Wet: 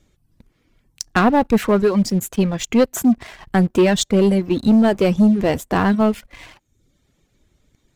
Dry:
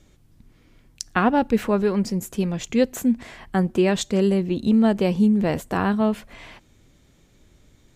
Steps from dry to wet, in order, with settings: reverb removal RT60 0.76 s; waveshaping leveller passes 2

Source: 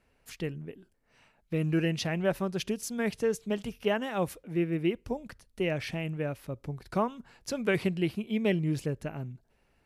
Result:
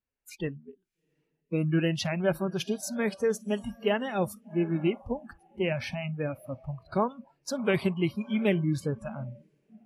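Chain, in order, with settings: coarse spectral quantiser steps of 15 dB; echo that smears into a reverb 727 ms, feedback 42%, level -15.5 dB; spectral noise reduction 25 dB; trim +2 dB

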